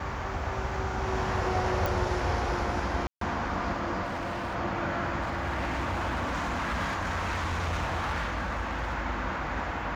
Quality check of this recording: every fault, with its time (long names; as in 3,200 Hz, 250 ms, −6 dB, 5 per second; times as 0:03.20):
0:01.86: click
0:03.07–0:03.21: drop-out 143 ms
0:04.05–0:04.56: clipping −29.5 dBFS
0:05.21–0:08.94: clipping −26.5 dBFS